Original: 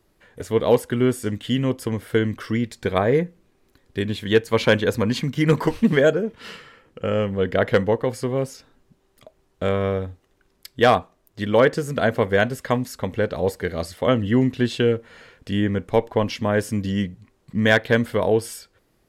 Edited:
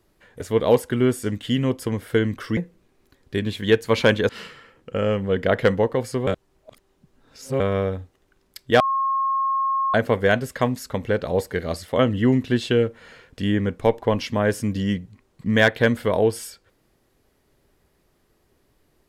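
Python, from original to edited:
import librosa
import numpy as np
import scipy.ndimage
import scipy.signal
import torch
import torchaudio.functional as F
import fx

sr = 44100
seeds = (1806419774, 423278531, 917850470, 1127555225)

y = fx.edit(x, sr, fx.cut(start_s=2.57, length_s=0.63),
    fx.cut(start_s=4.92, length_s=1.46),
    fx.reverse_span(start_s=8.36, length_s=1.33),
    fx.bleep(start_s=10.89, length_s=1.14, hz=1080.0, db=-19.0), tone=tone)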